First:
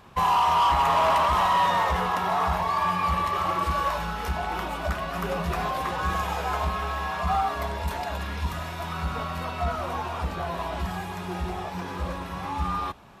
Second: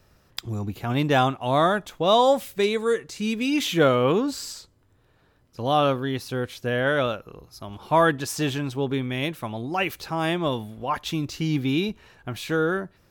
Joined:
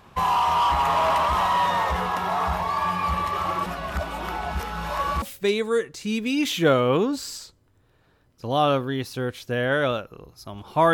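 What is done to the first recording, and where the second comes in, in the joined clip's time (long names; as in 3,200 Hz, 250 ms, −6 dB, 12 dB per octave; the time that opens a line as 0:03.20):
first
0:03.66–0:05.22: reverse
0:05.22: continue with second from 0:02.37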